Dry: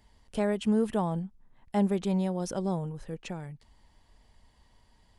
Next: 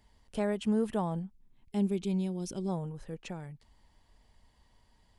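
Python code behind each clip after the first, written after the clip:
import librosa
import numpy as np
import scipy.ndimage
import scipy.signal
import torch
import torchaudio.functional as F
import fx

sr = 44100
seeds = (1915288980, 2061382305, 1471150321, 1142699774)

y = fx.spec_box(x, sr, start_s=1.32, length_s=1.37, low_hz=430.0, high_hz=2100.0, gain_db=-10)
y = y * librosa.db_to_amplitude(-3.0)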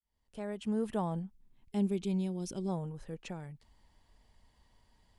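y = fx.fade_in_head(x, sr, length_s=1.04)
y = y * librosa.db_to_amplitude(-1.5)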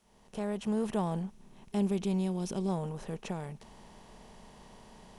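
y = fx.bin_compress(x, sr, power=0.6)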